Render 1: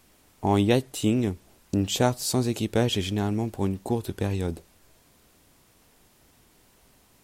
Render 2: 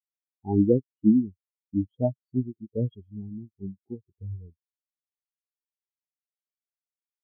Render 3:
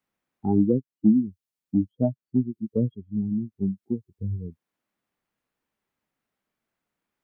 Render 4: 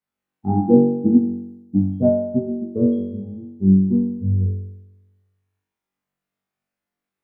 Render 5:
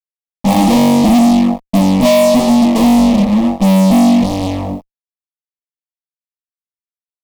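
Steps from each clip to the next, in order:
treble shelf 5.9 kHz -10.5 dB; spectral contrast expander 4:1
peaking EQ 210 Hz +7.5 dB 1.3 oct; three bands compressed up and down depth 70%; trim -2 dB
flutter echo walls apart 3.6 m, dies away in 1.3 s; upward expansion 1.5:1, over -39 dBFS; trim +4.5 dB
fuzz box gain 41 dB, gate -39 dBFS; static phaser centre 400 Hz, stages 6; trim +6.5 dB

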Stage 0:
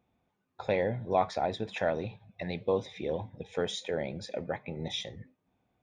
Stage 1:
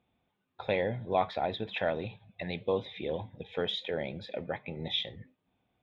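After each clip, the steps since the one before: resonant high shelf 4.6 kHz -11 dB, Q 3; trim -1.5 dB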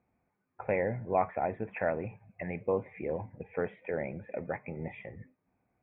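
steep low-pass 2.4 kHz 72 dB/octave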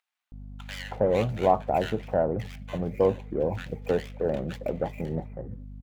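median filter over 25 samples; hum 50 Hz, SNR 13 dB; bands offset in time highs, lows 320 ms, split 1.4 kHz; trim +8 dB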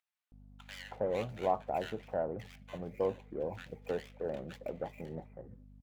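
bass shelf 240 Hz -7 dB; trim -8.5 dB

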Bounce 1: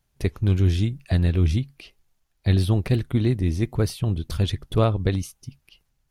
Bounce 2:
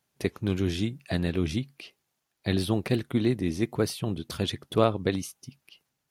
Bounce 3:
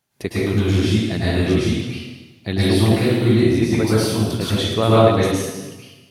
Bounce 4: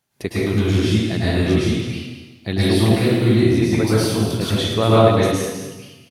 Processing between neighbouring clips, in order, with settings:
high-pass 190 Hz 12 dB/octave
plate-style reverb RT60 1.2 s, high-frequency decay 0.9×, pre-delay 95 ms, DRR -8.5 dB; trim +2 dB
delay 216 ms -12.5 dB

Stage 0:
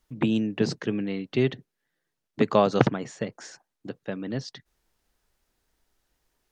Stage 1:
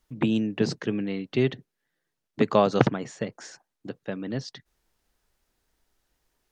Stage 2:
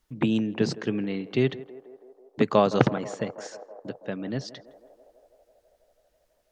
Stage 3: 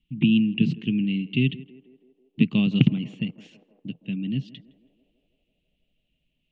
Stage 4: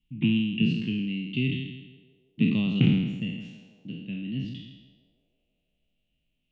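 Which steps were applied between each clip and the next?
no audible change
band-passed feedback delay 163 ms, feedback 82%, band-pass 640 Hz, level -15 dB
FFT filter 100 Hz 0 dB, 170 Hz +10 dB, 260 Hz +4 dB, 550 Hz -23 dB, 1.6 kHz -22 dB, 2.8 kHz +11 dB, 5.1 kHz -20 dB
spectral sustain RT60 1.04 s; trim -6 dB

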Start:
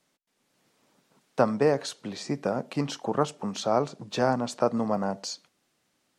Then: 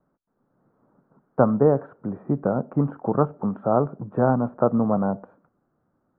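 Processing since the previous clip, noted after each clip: elliptic low-pass 1.4 kHz, stop band 70 dB; bass shelf 220 Hz +10.5 dB; trim +2.5 dB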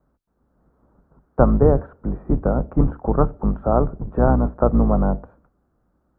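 octave divider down 2 oct, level +3 dB; trim +1.5 dB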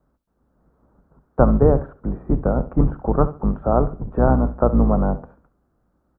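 feedback delay 69 ms, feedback 26%, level -15.5 dB

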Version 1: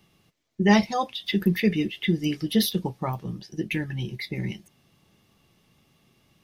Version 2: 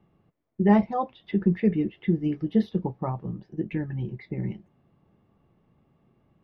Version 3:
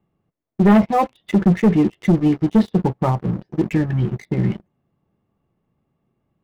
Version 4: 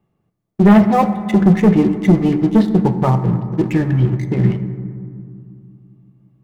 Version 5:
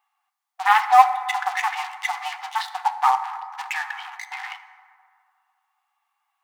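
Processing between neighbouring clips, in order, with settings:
low-pass 1.1 kHz 12 dB/octave
waveshaping leveller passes 3
reverberation RT60 2.4 s, pre-delay 4 ms, DRR 9 dB; trim +2.5 dB
brick-wall FIR high-pass 720 Hz; trim +4.5 dB

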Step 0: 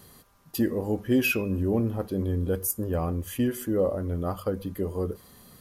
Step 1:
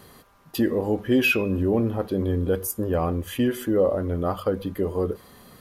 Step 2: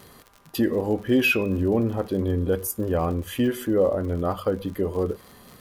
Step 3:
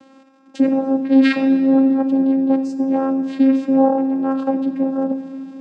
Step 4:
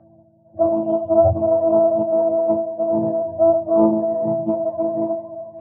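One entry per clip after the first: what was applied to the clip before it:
tone controls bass -5 dB, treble -8 dB; in parallel at -3 dB: peak limiter -23 dBFS, peak gain reduction 7.5 dB; on the sum: dynamic bell 3.6 kHz, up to +5 dB, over -54 dBFS, Q 2.5; trim +2 dB
crackle 74 per s -35 dBFS
vocoder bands 8, saw 268 Hz; reverberation RT60 2.3 s, pre-delay 4 ms, DRR 8.5 dB; trim +6.5 dB
spectrum inverted on a logarithmic axis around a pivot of 420 Hz; level-controlled noise filter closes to 1.7 kHz, open at -13.5 dBFS; loudspeaker Doppler distortion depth 0.2 ms

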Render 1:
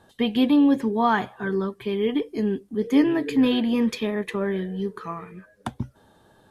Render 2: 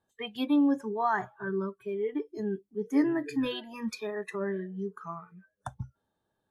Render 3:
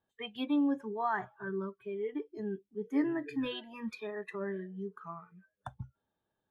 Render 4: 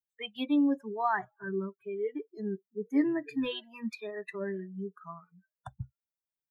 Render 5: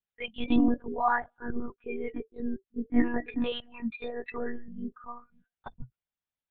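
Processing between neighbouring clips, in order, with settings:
spectral noise reduction 18 dB; trim -6 dB
resonant high shelf 4.3 kHz -8 dB, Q 1.5; trim -5 dB
expander on every frequency bin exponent 1.5; trim +4.5 dB
monotone LPC vocoder at 8 kHz 240 Hz; trim +3 dB

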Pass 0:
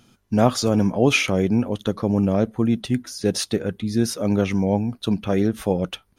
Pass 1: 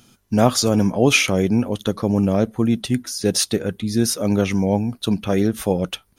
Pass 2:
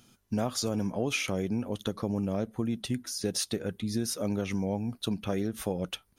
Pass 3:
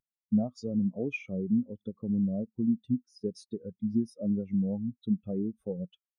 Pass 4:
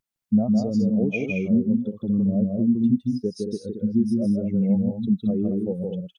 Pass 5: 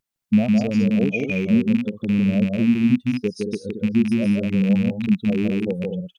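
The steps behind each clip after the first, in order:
treble shelf 5.2 kHz +8.5 dB; trim +1.5 dB
compression 5:1, threshold -19 dBFS, peak gain reduction 10 dB; trim -7.5 dB
spectral contrast expander 2.5:1
loudspeakers at several distances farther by 55 m -3 dB, 76 m -7 dB; trim +6.5 dB
rattle on loud lows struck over -26 dBFS, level -25 dBFS; trim +2.5 dB

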